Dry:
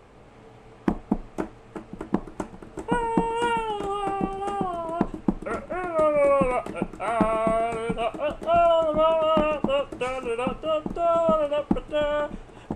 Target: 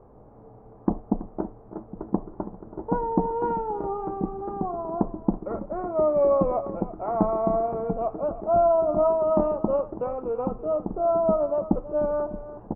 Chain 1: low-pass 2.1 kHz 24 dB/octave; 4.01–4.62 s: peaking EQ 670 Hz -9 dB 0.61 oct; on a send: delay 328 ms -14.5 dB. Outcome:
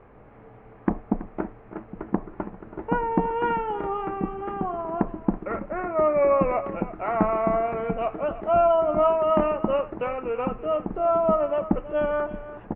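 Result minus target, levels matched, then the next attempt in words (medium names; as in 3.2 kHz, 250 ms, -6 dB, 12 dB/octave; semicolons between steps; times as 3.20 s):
2 kHz band +14.5 dB
low-pass 1 kHz 24 dB/octave; 4.01–4.62 s: peaking EQ 670 Hz -9 dB 0.61 oct; on a send: delay 328 ms -14.5 dB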